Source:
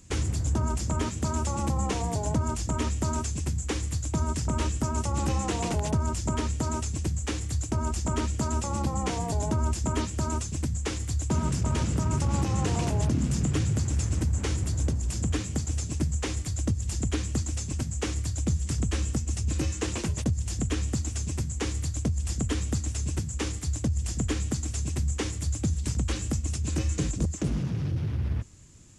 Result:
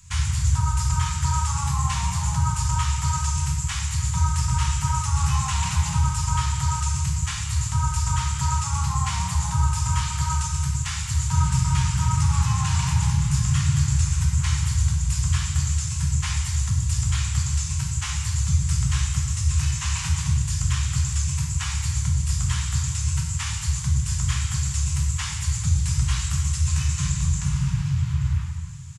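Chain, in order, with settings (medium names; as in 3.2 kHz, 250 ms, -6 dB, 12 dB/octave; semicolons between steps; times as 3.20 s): elliptic band-stop 150–950 Hz, stop band 40 dB; delay 879 ms -17 dB; gated-style reverb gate 440 ms falling, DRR -2 dB; trim +3 dB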